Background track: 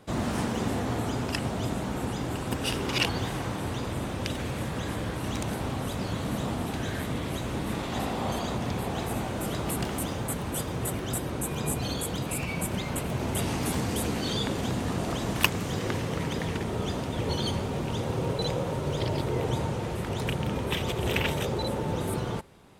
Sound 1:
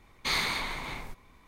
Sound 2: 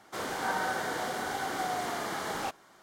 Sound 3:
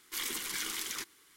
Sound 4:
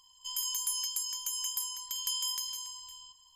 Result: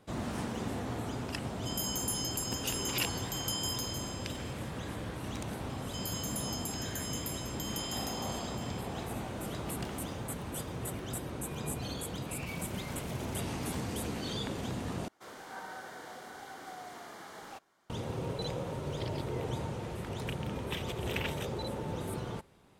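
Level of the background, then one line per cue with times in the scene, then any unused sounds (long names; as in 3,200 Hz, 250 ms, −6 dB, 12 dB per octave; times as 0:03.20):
background track −7.5 dB
0:01.41: mix in 4 −2.5 dB
0:05.69: mix in 4 −6.5 dB + multiband upward and downward compressor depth 40%
0:12.34: mix in 3 −10.5 dB + brickwall limiter −30 dBFS
0:15.08: overwrite with 2 −13 dB
not used: 1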